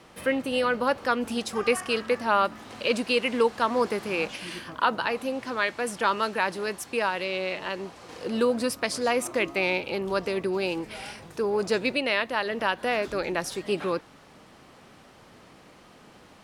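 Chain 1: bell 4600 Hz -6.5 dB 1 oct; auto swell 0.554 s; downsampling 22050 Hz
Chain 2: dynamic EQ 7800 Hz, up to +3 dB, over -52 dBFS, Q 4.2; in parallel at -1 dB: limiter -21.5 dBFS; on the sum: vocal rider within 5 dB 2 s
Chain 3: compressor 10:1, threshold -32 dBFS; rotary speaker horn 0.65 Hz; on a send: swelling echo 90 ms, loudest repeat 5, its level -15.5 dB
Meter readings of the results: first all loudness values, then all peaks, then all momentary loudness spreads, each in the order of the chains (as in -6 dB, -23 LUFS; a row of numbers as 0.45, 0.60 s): -32.0, -23.5, -38.0 LUFS; -11.5, -7.0, -18.5 dBFS; 13, 5, 10 LU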